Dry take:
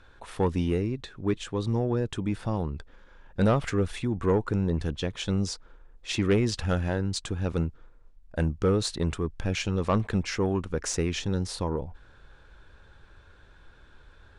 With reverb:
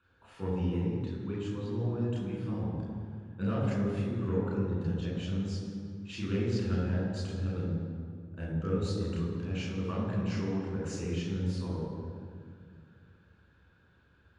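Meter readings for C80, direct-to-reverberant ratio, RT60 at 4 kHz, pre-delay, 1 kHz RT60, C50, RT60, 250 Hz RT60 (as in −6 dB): 2.0 dB, −5.5 dB, 1.4 s, 3 ms, 2.0 s, 0.0 dB, 2.2 s, 2.8 s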